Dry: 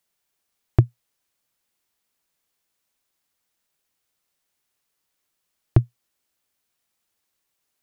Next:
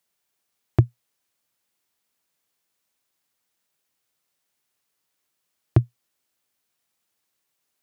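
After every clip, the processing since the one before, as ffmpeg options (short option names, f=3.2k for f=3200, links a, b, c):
-af "highpass=80"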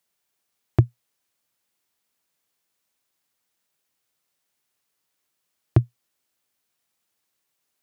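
-af anull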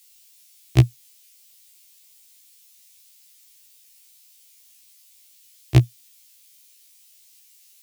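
-af "aexciter=amount=6.4:drive=6.3:freq=2.1k,afftfilt=real='re*1.73*eq(mod(b,3),0)':imag='im*1.73*eq(mod(b,3),0)':win_size=2048:overlap=0.75,volume=5dB"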